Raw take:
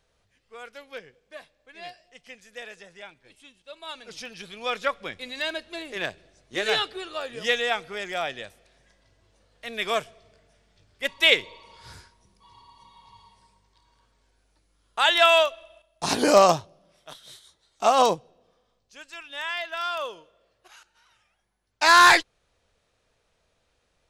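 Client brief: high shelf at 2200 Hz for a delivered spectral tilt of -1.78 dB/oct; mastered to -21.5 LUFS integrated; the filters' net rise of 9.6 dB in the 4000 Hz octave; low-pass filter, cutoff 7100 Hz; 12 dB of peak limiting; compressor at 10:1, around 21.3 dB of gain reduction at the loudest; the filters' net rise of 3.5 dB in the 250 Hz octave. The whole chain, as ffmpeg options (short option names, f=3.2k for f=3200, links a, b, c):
-af "lowpass=7.1k,equalizer=f=250:t=o:g=4.5,highshelf=f=2.2k:g=4,equalizer=f=4k:t=o:g=8.5,acompressor=threshold=-29dB:ratio=10,volume=15.5dB,alimiter=limit=-10dB:level=0:latency=1"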